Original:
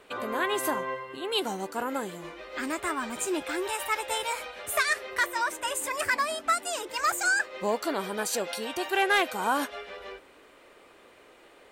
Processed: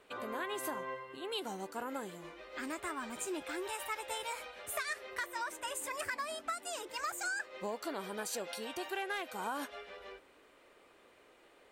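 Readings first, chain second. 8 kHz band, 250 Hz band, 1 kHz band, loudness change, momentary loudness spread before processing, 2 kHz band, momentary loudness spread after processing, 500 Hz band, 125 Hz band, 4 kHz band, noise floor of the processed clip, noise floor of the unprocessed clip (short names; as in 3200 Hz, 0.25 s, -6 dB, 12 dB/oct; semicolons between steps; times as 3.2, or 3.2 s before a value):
-9.5 dB, -9.5 dB, -11.0 dB, -11.0 dB, 10 LU, -11.5 dB, 6 LU, -10.0 dB, n/a, -10.5 dB, -63 dBFS, -55 dBFS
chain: compressor 6:1, threshold -26 dBFS, peak gain reduction 8 dB; gain -8 dB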